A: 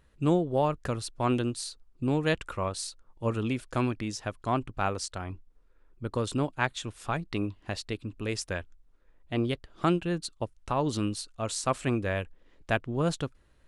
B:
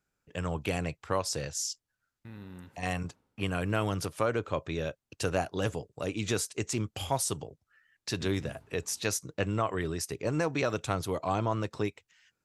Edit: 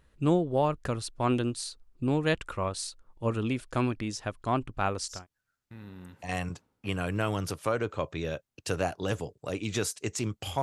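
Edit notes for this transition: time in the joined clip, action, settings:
A
0:05.17: continue with B from 0:01.71, crossfade 0.20 s

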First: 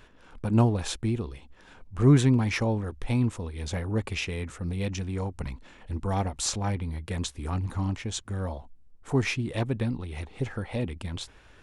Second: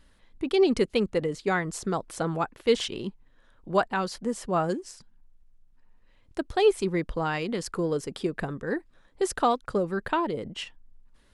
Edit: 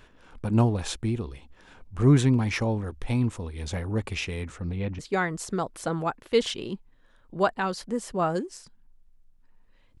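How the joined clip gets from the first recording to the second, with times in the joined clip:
first
0:04.49–0:04.99: low-pass filter 9,600 Hz → 1,400 Hz
0:04.99: continue with second from 0:01.33

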